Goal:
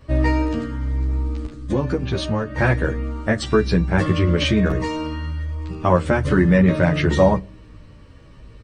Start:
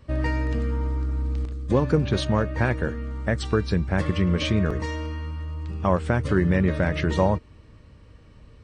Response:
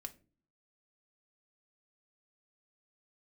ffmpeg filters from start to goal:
-filter_complex "[0:a]asettb=1/sr,asplit=3[link_01][link_02][link_03];[link_01]atrim=end=0.644[link_04];[link_02]atrim=start=0.64:end=2.55,asetpts=PTS-STARTPTS,afade=type=in:duration=0.004:curve=qsin,afade=type=out:start_time=1.906:duration=0.004:curve=qsin,acompressor=threshold=-25dB:ratio=3[link_05];[link_03]atrim=start=2.546[link_06];[link_04][link_05]acrossfade=duration=0.004:curve1=hsin:curve2=qsin[link_07];[link_07][link_06]acrossfade=duration=0.004:curve1=qsin:curve2=hsin,asplit=2[link_08][link_09];[1:a]atrim=start_sample=2205[link_10];[link_09][link_10]afir=irnorm=-1:irlink=0,volume=-0.5dB[link_11];[link_08][link_11]amix=inputs=2:normalize=0,asplit=2[link_12][link_13];[link_13]adelay=11.9,afreqshift=-1.1[link_14];[link_12][link_14]amix=inputs=2:normalize=1,volume=5dB"

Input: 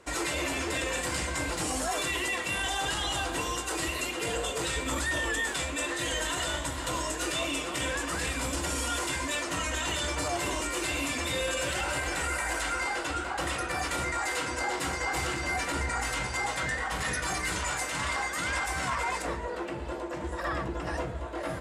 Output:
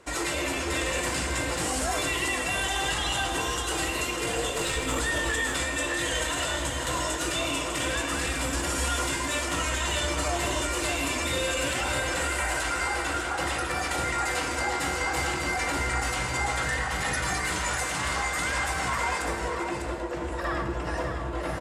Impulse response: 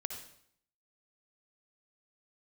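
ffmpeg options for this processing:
-filter_complex "[0:a]asettb=1/sr,asplit=3[link_01][link_02][link_03];[link_01]atrim=end=4.534[link_04];[link_02]atrim=start=4.53:end=5.01,asetpts=PTS-STARTPTS,afade=type=in:duration=0.004:curve=qsin,afade=type=out:start_time=0.476:duration=0.004:curve=qsin,aeval=exprs='0.112*(cos(1*acos(clip(val(0)/0.112,-1,1)))-cos(1*PI/2))+0.0224*(cos(2*acos(clip(val(0)/0.112,-1,1)))-cos(2*PI/2))':channel_layout=same[link_05];[link_03]atrim=start=5.006[link_06];[link_04][link_05]acrossfade=duration=0.004:curve1=hsin:curve2=qsin[link_07];[link_07][link_06]acrossfade=duration=0.004:curve1=qsin:curve2=hsin,aecho=1:1:599:0.473,asplit=2[link_08][link_09];[1:a]atrim=start_sample=2205,asetrate=41895,aresample=44100[link_10];[link_09][link_10]afir=irnorm=-1:irlink=0,volume=4dB[link_11];[link_08][link_11]amix=inputs=2:normalize=0,volume=-6dB"

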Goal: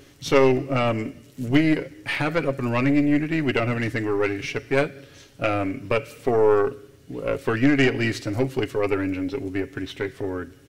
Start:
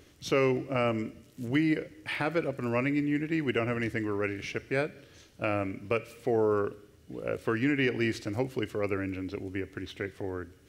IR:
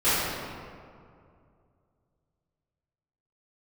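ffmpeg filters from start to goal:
-af "aecho=1:1:7.3:0.47,aeval=exprs='0.251*(cos(1*acos(clip(val(0)/0.251,-1,1)))-cos(1*PI/2))+0.0355*(cos(4*acos(clip(val(0)/0.251,-1,1)))-cos(4*PI/2))':channel_layout=same,volume=6.5dB"

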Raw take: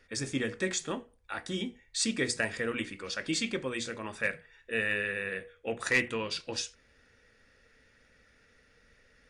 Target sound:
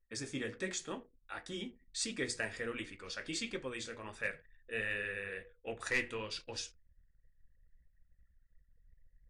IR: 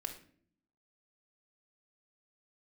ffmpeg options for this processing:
-filter_complex "[0:a]asplit=2[link_01][link_02];[1:a]atrim=start_sample=2205[link_03];[link_02][link_03]afir=irnorm=-1:irlink=0,volume=-16dB[link_04];[link_01][link_04]amix=inputs=2:normalize=0,asubboost=boost=5.5:cutoff=64,flanger=delay=5.5:depth=7.6:regen=-59:speed=1.4:shape=triangular,anlmdn=0.000158,volume=-3.5dB"

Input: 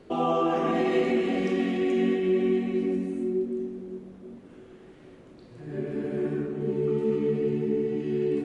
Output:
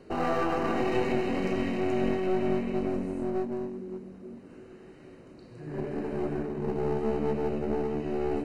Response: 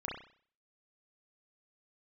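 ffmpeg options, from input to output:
-af "aeval=exprs='clip(val(0),-1,0.0188)':channel_layout=same,asuperstop=centerf=3400:order=20:qfactor=6.1"

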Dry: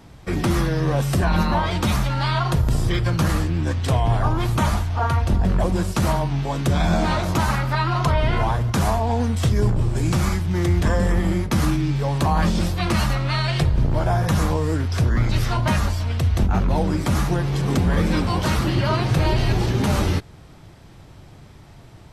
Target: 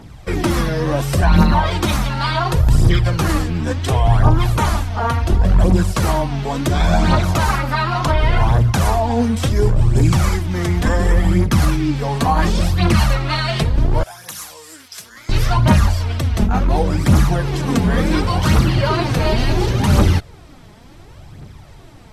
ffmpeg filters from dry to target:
ffmpeg -i in.wav -filter_complex "[0:a]asettb=1/sr,asplit=3[link_01][link_02][link_03];[link_01]atrim=end=14.034[link_04];[link_02]atrim=start=14.03:end=15.29,asetpts=PTS-STARTPTS,afade=type=in:duration=0.004:curve=qsin,afade=type=out:start_time=1.256:duration=0.004:curve=qsin,aderivative[link_05];[link_03]atrim=start=15.286[link_06];[link_04][link_05]acrossfade=duration=0.004:curve1=hsin:curve2=qsin[link_07];[link_07][link_06]acrossfade=duration=0.004:curve1=qsin:curve2=hsin,aphaser=in_gain=1:out_gain=1:delay=4.9:decay=0.51:speed=0.7:type=triangular,volume=3dB" out.wav

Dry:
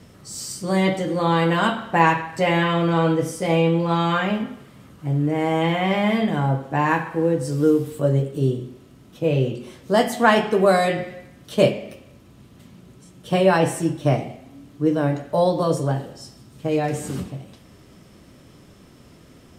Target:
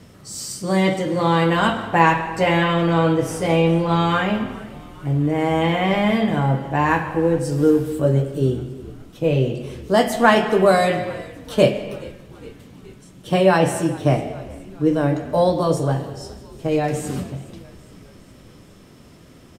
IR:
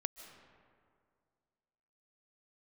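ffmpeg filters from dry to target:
-filter_complex "[0:a]asplit=6[link_01][link_02][link_03][link_04][link_05][link_06];[link_02]adelay=417,afreqshift=-63,volume=-21dB[link_07];[link_03]adelay=834,afreqshift=-126,volume=-25dB[link_08];[link_04]adelay=1251,afreqshift=-189,volume=-29dB[link_09];[link_05]adelay=1668,afreqshift=-252,volume=-33dB[link_10];[link_06]adelay=2085,afreqshift=-315,volume=-37.1dB[link_11];[link_01][link_07][link_08][link_09][link_10][link_11]amix=inputs=6:normalize=0,asplit=2[link_12][link_13];[1:a]atrim=start_sample=2205,afade=type=out:start_time=0.4:duration=0.01,atrim=end_sample=18081[link_14];[link_13][link_14]afir=irnorm=-1:irlink=0,volume=3.5dB[link_15];[link_12][link_15]amix=inputs=2:normalize=0,volume=-5.5dB"

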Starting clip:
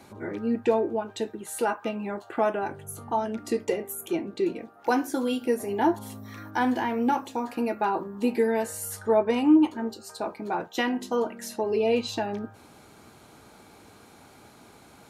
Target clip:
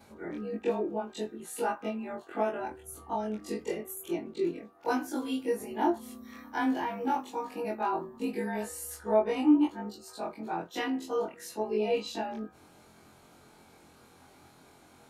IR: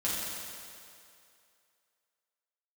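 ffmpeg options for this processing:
-af "afftfilt=real='re':imag='-im':win_size=2048:overlap=0.75,volume=-1dB"

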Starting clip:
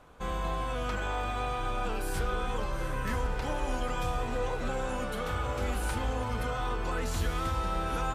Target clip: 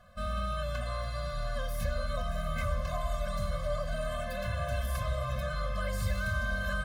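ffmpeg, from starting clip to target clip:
ffmpeg -i in.wav -af "asetrate=52479,aresample=44100,afftfilt=real='re*eq(mod(floor(b*sr/1024/250),2),0)':imag='im*eq(mod(floor(b*sr/1024/250),2),0)':win_size=1024:overlap=0.75" out.wav

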